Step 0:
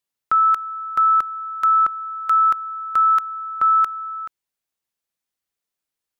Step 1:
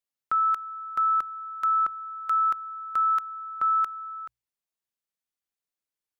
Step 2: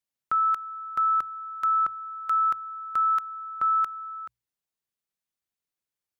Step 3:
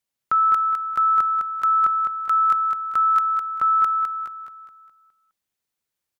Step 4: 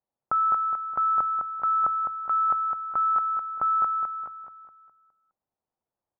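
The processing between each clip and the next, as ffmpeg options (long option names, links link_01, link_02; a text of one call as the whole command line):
ffmpeg -i in.wav -af "bandreject=frequency=60:width_type=h:width=6,bandreject=frequency=120:width_type=h:width=6,volume=-7.5dB" out.wav
ffmpeg -i in.wav -af "equalizer=frequency=120:width=0.85:gain=5" out.wav
ffmpeg -i in.wav -af "aecho=1:1:207|414|621|828|1035:0.531|0.228|0.0982|0.0422|0.0181,volume=5dB" out.wav
ffmpeg -i in.wav -af "lowpass=frequency=810:width_type=q:width=2" out.wav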